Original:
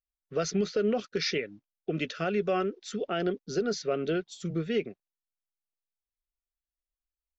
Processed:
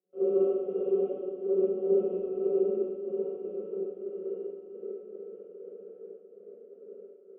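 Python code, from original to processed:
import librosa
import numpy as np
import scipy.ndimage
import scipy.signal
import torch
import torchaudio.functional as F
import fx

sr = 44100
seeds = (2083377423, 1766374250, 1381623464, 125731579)

p1 = fx.paulstretch(x, sr, seeds[0], factor=18.0, window_s=0.25, from_s=2.42)
p2 = fx.level_steps(p1, sr, step_db=15)
p3 = fx.env_flanger(p2, sr, rest_ms=4.4, full_db=-31.5)
p4 = fx.paulstretch(p3, sr, seeds[1], factor=5.2, window_s=1.0, from_s=4.23)
p5 = fx.bandpass_q(p4, sr, hz=490.0, q=5.5)
p6 = fx.step_gate(p5, sr, bpm=119, pattern='.xxx.xxxx..xx', floor_db=-24.0, edge_ms=4.5)
p7 = p6 + fx.echo_swing(p6, sr, ms=1315, ratio=3, feedback_pct=51, wet_db=-14.0, dry=0)
p8 = fx.rev_schroeder(p7, sr, rt60_s=1.7, comb_ms=33, drr_db=-10.0)
p9 = fx.band_widen(p8, sr, depth_pct=70)
y = F.gain(torch.from_numpy(p9), 3.5).numpy()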